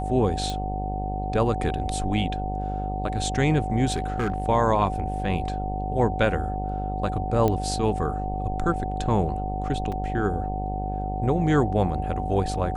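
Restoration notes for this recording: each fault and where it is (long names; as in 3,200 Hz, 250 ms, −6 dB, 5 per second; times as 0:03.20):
mains buzz 50 Hz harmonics 18 −30 dBFS
whistle 750 Hz −31 dBFS
0:00.50: click
0:03.92–0:04.42: clipping −20.5 dBFS
0:07.48: click −12 dBFS
0:09.92: drop-out 4.3 ms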